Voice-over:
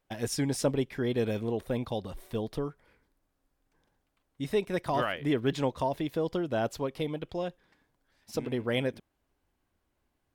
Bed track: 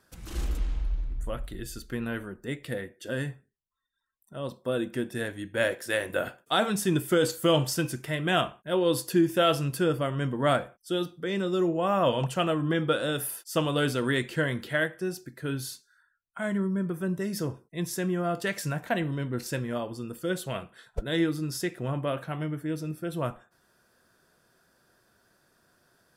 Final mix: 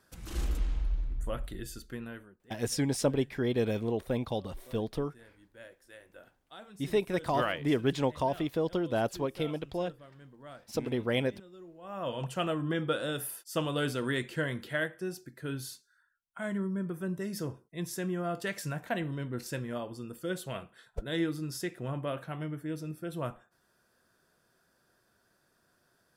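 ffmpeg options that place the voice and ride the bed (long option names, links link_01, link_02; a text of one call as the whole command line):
ffmpeg -i stem1.wav -i stem2.wav -filter_complex "[0:a]adelay=2400,volume=0dB[link_01];[1:a]volume=18dB,afade=type=out:start_time=1.47:duration=0.92:silence=0.0707946,afade=type=in:start_time=11.8:duration=0.61:silence=0.105925[link_02];[link_01][link_02]amix=inputs=2:normalize=0" out.wav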